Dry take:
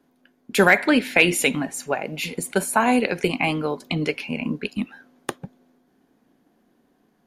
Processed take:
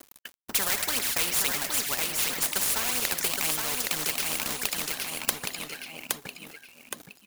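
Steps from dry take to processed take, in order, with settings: RIAA curve recording; phaser 2 Hz, delay 2.4 ms, feedback 56%; companded quantiser 4-bit; on a send: feedback delay 818 ms, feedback 22%, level -10 dB; on the sum: spectrum-flattening compressor 4:1; trim -2.5 dB

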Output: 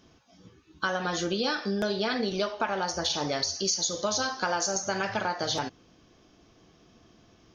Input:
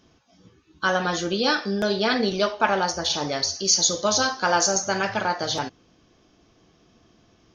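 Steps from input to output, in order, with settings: compression, threshold -25 dBFS, peak gain reduction 11 dB

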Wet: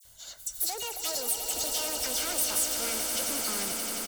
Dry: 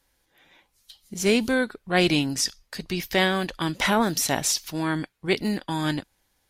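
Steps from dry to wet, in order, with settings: gliding tape speed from 198% -> 121%; bass shelf 140 Hz +9.5 dB; comb 1.4 ms, depth 47%; phase dispersion lows, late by 47 ms, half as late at 2.8 kHz; compression 2.5:1, threshold -42 dBFS, peak gain reduction 17.5 dB; saturation -37.5 dBFS, distortion -10 dB; waveshaping leveller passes 1; tone controls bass -7 dB, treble +12 dB; on a send: echo with a slow build-up 88 ms, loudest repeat 8, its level -10 dB; on the sum: trim +2.5 dB

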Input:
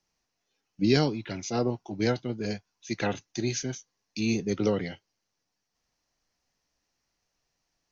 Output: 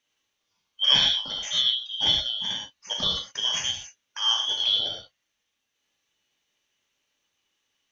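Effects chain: four frequency bands reordered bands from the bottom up 2413; gated-style reverb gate 140 ms flat, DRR 0 dB

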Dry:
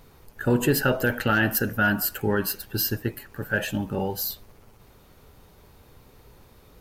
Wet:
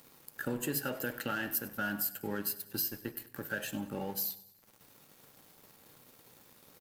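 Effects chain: high-pass 120 Hz 24 dB/octave; treble shelf 5.1 kHz +10 dB; compression 2.5:1, threshold -42 dBFS, peak gain reduction 19.5 dB; crossover distortion -52.5 dBFS; feedback delay 98 ms, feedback 50%, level -18.5 dB; on a send at -11.5 dB: reverberation RT60 0.60 s, pre-delay 4 ms; on the sum: trim +2 dB

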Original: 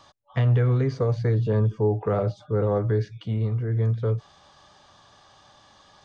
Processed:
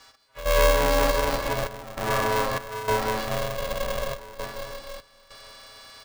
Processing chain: partials quantised in pitch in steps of 3 st; band-stop 440 Hz, Q 12; frequency shift +180 Hz; reverberation RT60 2.6 s, pre-delay 118 ms, DRR -3 dB; trance gate "x..xxxxxxxx..xxx" 99 bpm -12 dB; comb 5.5 ms, depth 42%; spectral freeze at 3.61 s, 0.54 s; polarity switched at an audio rate 270 Hz; trim -3.5 dB

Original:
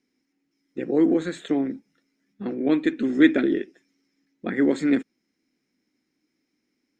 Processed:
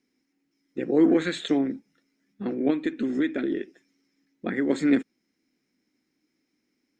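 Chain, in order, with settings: 1.03–1.57 s: peaking EQ 1.2 kHz -> 6.5 kHz +10.5 dB 1.3 oct; 2.70–4.70 s: compression 5:1, threshold -23 dBFS, peak gain reduction 12 dB

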